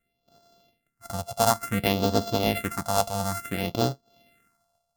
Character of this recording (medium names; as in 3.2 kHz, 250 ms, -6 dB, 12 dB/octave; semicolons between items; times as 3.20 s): a buzz of ramps at a fixed pitch in blocks of 64 samples; phasing stages 4, 0.57 Hz, lowest notch 320–2200 Hz